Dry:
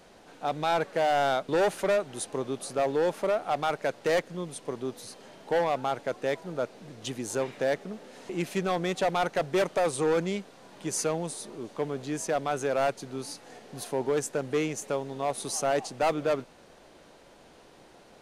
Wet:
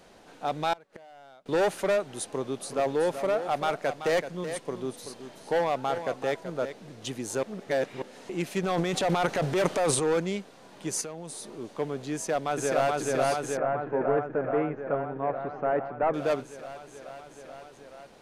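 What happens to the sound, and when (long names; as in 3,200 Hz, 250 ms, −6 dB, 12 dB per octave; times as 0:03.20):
0:00.73–0:01.46: gate with flip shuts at −27 dBFS, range −26 dB
0:02.32–0:06.73: single-tap delay 380 ms −10 dB
0:07.43–0:08.02: reverse
0:08.63–0:10.12: transient designer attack −2 dB, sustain +11 dB
0:11.01–0:11.56: downward compressor, threshold −35 dBFS
0:12.14–0:12.95: delay throw 430 ms, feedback 80%, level −0.5 dB
0:13.57–0:16.14: low-pass filter 1,800 Hz 24 dB per octave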